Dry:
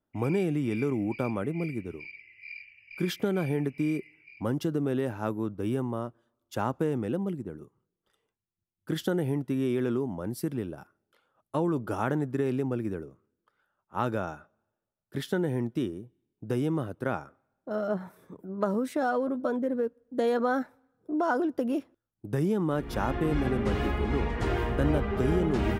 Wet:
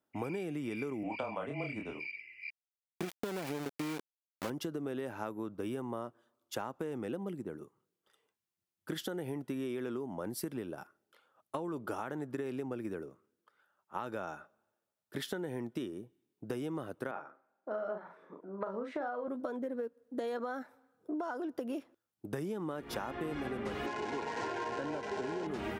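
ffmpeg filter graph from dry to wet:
-filter_complex "[0:a]asettb=1/sr,asplit=3[a][b][c];[a]atrim=end=1.034[d];[b]atrim=start=1.03:end=1.99,asetpts=PTS-STARTPTS,afade=t=in:d=0.004:c=qsin,afade=t=out:st=0.956:d=0.004:c=qsin,highpass=120,equalizer=f=210:t=q:w=4:g=-4,equalizer=f=380:t=q:w=4:g=-9,equalizer=f=670:t=q:w=4:g=10,equalizer=f=1k:t=q:w=4:g=6,equalizer=f=3k:t=q:w=4:g=7,equalizer=f=6k:t=q:w=4:g=-5,lowpass=f=7.4k:w=0.5412,lowpass=f=7.4k:w=1.3066,afreqshift=-18,asplit=2[e][f];[f]adelay=28,volume=-4dB[g];[e][g]amix=inputs=2:normalize=0,atrim=end_sample=42336[h];[c]atrim=start=1.986[i];[d][h]acrossfade=d=0.004:c1=hsin:c2=qsin[j];[j][i]acrossfade=d=0.004:c1=qsin:c2=hsin,asettb=1/sr,asplit=3[k][l][m];[k]atrim=end=2.504[n];[l]atrim=start=2.5:end=4.5,asetpts=PTS-STARTPTS,afade=t=in:d=0.004:c=qsin,afade=t=out:st=1.996:d=0.004:c=qsin,highpass=56,equalizer=f=4k:w=0.38:g=-7.5,aeval=exprs='val(0)*gte(abs(val(0)),0.0299)':c=same[o];[m]atrim=start=4.496[p];[n][o]acrossfade=d=0.004:c1=hsin:c2=qsin[q];[q][p]acrossfade=d=0.004:c1=qsin:c2=hsin,asettb=1/sr,asplit=3[r][s][t];[r]atrim=end=17.114[u];[s]atrim=start=17.11:end=19.28,asetpts=PTS-STARTPTS,afade=t=in:d=0.004:c=qsin,afade=t=out:st=2.166:d=0.004:c=qsin,highpass=150,lowpass=2.1k,lowshelf=f=210:g=-10.5,asplit=2[v][w];[w]adelay=41,volume=-6dB[x];[v][x]amix=inputs=2:normalize=0,atrim=end_sample=95697[y];[t]atrim=start=19.276[z];[u][y]acrossfade=d=0.004:c1=hsin:c2=qsin[aa];[aa][z]acrossfade=d=0.004:c1=qsin:c2=hsin,asettb=1/sr,asplit=3[ab][ac][ad];[ab]atrim=end=23.864[ae];[ac]atrim=start=23.86:end=25.47,asetpts=PTS-STARTPTS,afade=t=in:d=0.004:c=qsin,afade=t=out:st=1.606:d=0.004:c=qsin,aeval=exprs='val(0)+0.5*0.0299*sgn(val(0))':c=same,asuperstop=centerf=1200:order=20:qfactor=5.5,highpass=f=110:w=0.5412,highpass=f=110:w=1.3066,equalizer=f=130:t=q:w=4:g=-5,equalizer=f=200:t=q:w=4:g=-9,equalizer=f=1.1k:t=q:w=4:g=10,equalizer=f=2.1k:t=q:w=4:g=-3,equalizer=f=3.4k:t=q:w=4:g=-4,lowpass=f=7k:w=0.5412,lowpass=f=7k:w=1.3066[af];[ad]atrim=start=25.466[ag];[ae][af]acrossfade=d=0.004:c1=hsin:c2=qsin[ah];[ah][ag]acrossfade=d=0.004:c1=qsin:c2=hsin,highpass=f=370:p=1,alimiter=limit=-20.5dB:level=0:latency=1:release=310,acompressor=threshold=-36dB:ratio=10,volume=2dB"

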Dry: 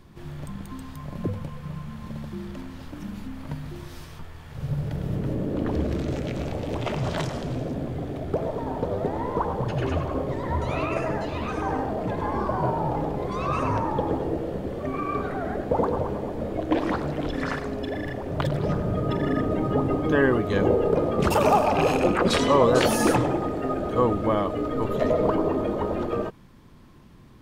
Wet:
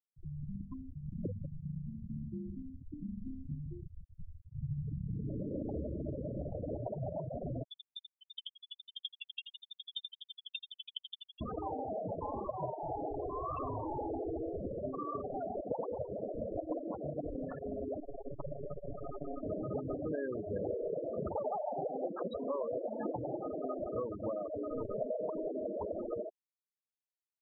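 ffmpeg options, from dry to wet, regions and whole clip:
-filter_complex "[0:a]asettb=1/sr,asplit=3[a][b][c];[a]atrim=end=7.634[d];[b]atrim=start=7.63:end=11.41,asetpts=PTS-STARTPTS,afade=t=in:d=0.004:c=qsin,afade=t=out:st=3.776:d=0.004:c=qsin,flanger=delay=18.5:depth=5.8:speed=1.9,lowpass=f=3.1k:t=q:w=0.5098,lowpass=f=3.1k:t=q:w=0.6013,lowpass=f=3.1k:t=q:w=0.9,lowpass=f=3.1k:t=q:w=2.563,afreqshift=-3700,aeval=exprs='val(0)*pow(10,-37*if(lt(mod(12*n/s,1),2*abs(12)/1000),1-mod(12*n/s,1)/(2*abs(12)/1000),(mod(12*n/s,1)-2*abs(12)/1000)/(1-2*abs(12)/1000))/20)':c=same[e];[c]atrim=start=11.406[f];[d][e]acrossfade=d=0.004:c1=hsin:c2=qsin[g];[g][f]acrossfade=d=0.004:c1=qsin:c2=hsin,asettb=1/sr,asplit=3[h][i][j];[h]atrim=end=12.744[k];[i]atrim=start=12.74:end=14.61,asetpts=PTS-STARTPTS,afade=t=in:d=0.004:c=qsin,afade=t=out:st=1.866:d=0.004:c=qsin,bandreject=f=50:t=h:w=6,bandreject=f=100:t=h:w=6,bandreject=f=150:t=h:w=6,bandreject=f=200:t=h:w=6,bandreject=f=250:t=h:w=6,bandreject=f=300:t=h:w=6,bandreject=f=350:t=h:w=6,bandreject=f=400:t=h:w=6,bandreject=f=450:t=h:w=6,aecho=1:1:2.7:0.46,atrim=end_sample=82467,volume=26.5dB,asoftclip=hard,volume=-26.5dB[l];[j]atrim=start=14.606[m];[k][l]acrossfade=d=0.004:c1=hsin:c2=qsin[n];[n][m]acrossfade=d=0.004:c1=qsin:c2=hsin,asettb=1/sr,asplit=3[o][p][q];[o]atrim=end=18.004[r];[p]atrim=start=18:end=19.43,asetpts=PTS-STARTPTS,afade=t=in:d=0.004:c=qsin,afade=t=out:st=1.426:d=0.004:c=qsin,adynamicequalizer=threshold=0.0112:dfrequency=140:dqfactor=0.79:tfrequency=140:tqfactor=0.79:attack=5:release=100:ratio=0.375:range=4:mode=cutabove:tftype=bell,aecho=1:1:7.2:0.75,atrim=end_sample=63063,aeval=exprs='max(val(0),0)':c=same[s];[q]atrim=start=19.426[t];[r][s]acrossfade=d=0.004:c1=hsin:c2=qsin[u];[u][t]acrossfade=d=0.004:c1=qsin:c2=hsin,adynamicequalizer=threshold=0.0141:dfrequency=620:dqfactor=1.8:tfrequency=620:tqfactor=1.8:attack=5:release=100:ratio=0.375:range=3.5:mode=boostabove:tftype=bell,acompressor=threshold=-29dB:ratio=6,afftfilt=real='re*gte(hypot(re,im),0.0794)':imag='im*gte(hypot(re,im),0.0794)':win_size=1024:overlap=0.75,volume=-5dB"

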